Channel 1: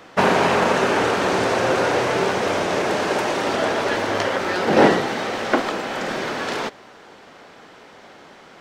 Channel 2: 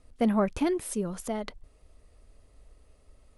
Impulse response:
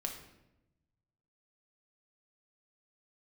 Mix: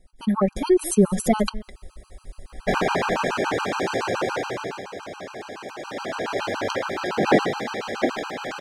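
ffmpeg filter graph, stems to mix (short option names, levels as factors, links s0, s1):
-filter_complex "[0:a]adelay=2500,volume=2.66,afade=t=out:st=4.17:d=0.7:silence=0.316228,afade=t=in:st=5.75:d=0.66:silence=0.298538[s0];[1:a]aecho=1:1:5.4:0.64,dynaudnorm=f=170:g=9:m=6.31,volume=1.26,asplit=2[s1][s2];[s2]volume=0.119,aecho=0:1:206:1[s3];[s0][s1][s3]amix=inputs=3:normalize=0,afftfilt=real='re*gt(sin(2*PI*7.1*pts/sr)*(1-2*mod(floor(b*sr/1024/800),2)),0)':imag='im*gt(sin(2*PI*7.1*pts/sr)*(1-2*mod(floor(b*sr/1024/800),2)),0)':win_size=1024:overlap=0.75"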